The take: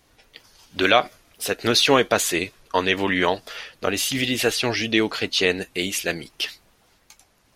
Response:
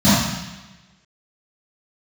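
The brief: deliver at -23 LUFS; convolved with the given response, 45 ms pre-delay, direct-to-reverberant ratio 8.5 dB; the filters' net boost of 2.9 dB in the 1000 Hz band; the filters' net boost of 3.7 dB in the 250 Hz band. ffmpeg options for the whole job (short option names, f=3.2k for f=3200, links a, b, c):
-filter_complex "[0:a]equalizer=f=250:t=o:g=4.5,equalizer=f=1k:t=o:g=3.5,asplit=2[a][b];[1:a]atrim=start_sample=2205,adelay=45[c];[b][c]afir=irnorm=-1:irlink=0,volume=-33dB[d];[a][d]amix=inputs=2:normalize=0,volume=-4.5dB"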